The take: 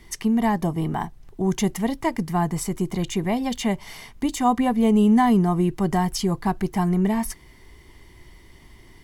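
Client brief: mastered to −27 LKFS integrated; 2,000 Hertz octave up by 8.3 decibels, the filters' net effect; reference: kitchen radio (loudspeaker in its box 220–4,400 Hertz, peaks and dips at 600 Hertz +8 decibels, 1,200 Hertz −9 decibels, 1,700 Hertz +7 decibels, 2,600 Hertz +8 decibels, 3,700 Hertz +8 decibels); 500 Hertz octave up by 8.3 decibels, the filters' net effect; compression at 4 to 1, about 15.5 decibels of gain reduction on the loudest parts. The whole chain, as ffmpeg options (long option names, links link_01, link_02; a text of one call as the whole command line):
ffmpeg -i in.wav -af "equalizer=frequency=500:width_type=o:gain=8.5,equalizer=frequency=2000:width_type=o:gain=3,acompressor=threshold=-31dB:ratio=4,highpass=220,equalizer=frequency=600:width_type=q:width=4:gain=8,equalizer=frequency=1200:width_type=q:width=4:gain=-9,equalizer=frequency=1700:width_type=q:width=4:gain=7,equalizer=frequency=2600:width_type=q:width=4:gain=8,equalizer=frequency=3700:width_type=q:width=4:gain=8,lowpass=frequency=4400:width=0.5412,lowpass=frequency=4400:width=1.3066,volume=6.5dB" out.wav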